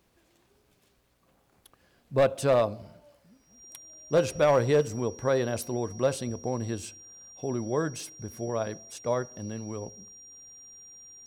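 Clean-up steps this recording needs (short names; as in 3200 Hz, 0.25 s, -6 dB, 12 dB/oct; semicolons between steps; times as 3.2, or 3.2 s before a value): clip repair -15.5 dBFS; notch 5700 Hz, Q 30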